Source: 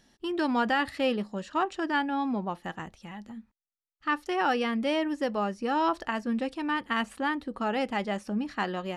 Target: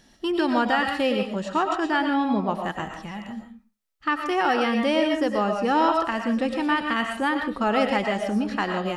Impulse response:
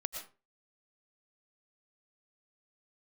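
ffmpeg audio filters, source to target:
-filter_complex "[0:a]alimiter=limit=-20dB:level=0:latency=1:release=412[a];[1:a]atrim=start_sample=2205[b];[a][b]afir=irnorm=-1:irlink=0,volume=7.5dB"

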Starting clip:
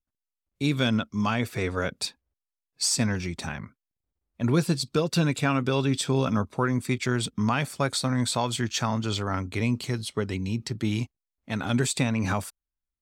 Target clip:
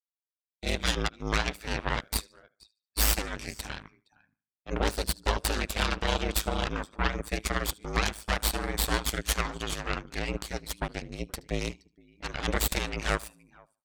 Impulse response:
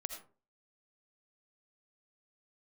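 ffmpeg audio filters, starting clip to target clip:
-filter_complex "[0:a]asoftclip=type=tanh:threshold=-14dB,highpass=f=470:p=1,asplit=2[a][b];[b]aecho=0:1:443:0.112[c];[a][c]amix=inputs=2:normalize=0,atempo=0.94,afftdn=nr=18:nf=-53,asplit=2[d][e];[e]aecho=0:1:74|148|222:0.112|0.0348|0.0108[f];[d][f]amix=inputs=2:normalize=0,aeval=exprs='0.211*(cos(1*acos(clip(val(0)/0.211,-1,1)))-cos(1*PI/2))+0.0211*(cos(2*acos(clip(val(0)/0.211,-1,1)))-cos(2*PI/2))+0.0211*(cos(3*acos(clip(val(0)/0.211,-1,1)))-cos(3*PI/2))+0.0944*(cos(6*acos(clip(val(0)/0.211,-1,1)))-cos(6*PI/2))':c=same,aeval=exprs='val(0)*sin(2*PI*53*n/s)':c=same"

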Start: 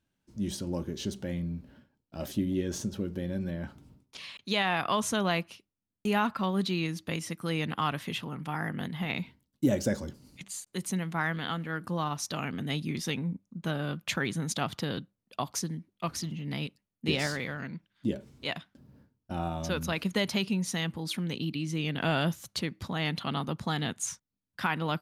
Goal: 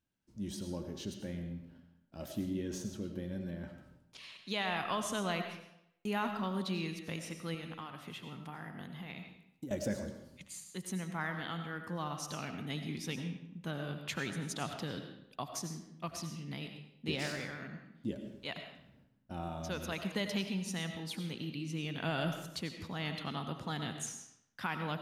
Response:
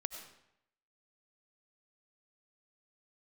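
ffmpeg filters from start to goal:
-filter_complex "[0:a]asettb=1/sr,asplit=3[a][b][c];[a]atrim=end=7.544[d];[b]atrim=start=7.54:end=9.71,asetpts=PTS-STARTPTS,afade=t=in:d=0.004:c=qsin,afade=t=out:st=2.166:d=0.004:c=qsin,acompressor=threshold=-35dB:ratio=6[e];[c]atrim=start=9.706[f];[d][e]acrossfade=d=0.004:c1=hsin:c2=qsin[g];[g][f]acrossfade=d=0.004:c1=qsin:c2=hsin[h];[1:a]atrim=start_sample=2205[i];[h][i]afir=irnorm=-1:irlink=0,volume=-6dB"

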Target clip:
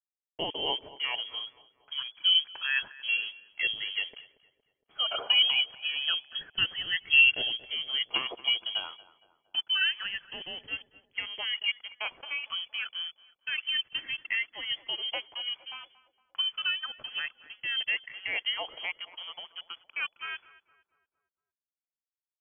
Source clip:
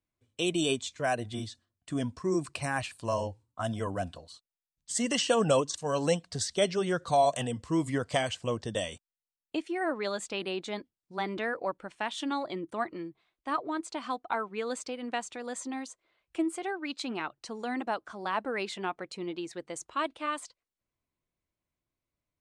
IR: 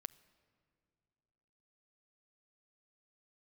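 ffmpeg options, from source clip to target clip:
-filter_complex "[0:a]afftfilt=real='re*pow(10,19/40*sin(2*PI*(0.84*log(max(b,1)*sr/1024/100)/log(2)-(-0.28)*(pts-256)/sr)))':imag='im*pow(10,19/40*sin(2*PI*(0.84*log(max(b,1)*sr/1024/100)/log(2)-(-0.28)*(pts-256)/sr)))':win_size=1024:overlap=0.75,aeval=exprs='sgn(val(0))*max(abs(val(0))-0.00562,0)':c=same,lowpass=f=2.9k:t=q:w=0.5098,lowpass=f=2.9k:t=q:w=0.6013,lowpass=f=2.9k:t=q:w=0.9,lowpass=f=2.9k:t=q:w=2.563,afreqshift=-3400,asplit=2[a][b];[b]adelay=231,lowpass=f=1.3k:p=1,volume=-15.5dB,asplit=2[c][d];[d]adelay=231,lowpass=f=1.3k:p=1,volume=0.55,asplit=2[e][f];[f]adelay=231,lowpass=f=1.3k:p=1,volume=0.55,asplit=2[g][h];[h]adelay=231,lowpass=f=1.3k:p=1,volume=0.55,asplit=2[i][j];[j]adelay=231,lowpass=f=1.3k:p=1,volume=0.55[k];[a][c][e][g][i][k]amix=inputs=6:normalize=0,volume=-2.5dB"

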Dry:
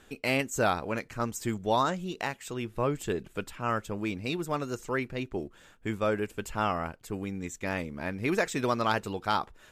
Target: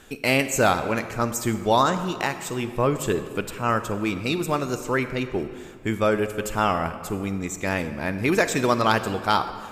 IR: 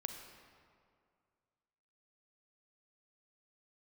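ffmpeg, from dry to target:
-filter_complex "[0:a]asplit=2[a][b];[1:a]atrim=start_sample=2205,highshelf=f=6.2k:g=7.5[c];[b][c]afir=irnorm=-1:irlink=0,volume=3.5dB[d];[a][d]amix=inputs=2:normalize=0"

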